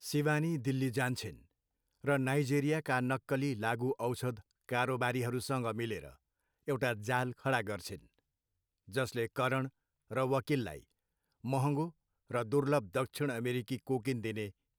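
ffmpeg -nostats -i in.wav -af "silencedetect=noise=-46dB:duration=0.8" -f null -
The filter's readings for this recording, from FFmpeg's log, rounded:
silence_start: 7.98
silence_end: 8.89 | silence_duration: 0.91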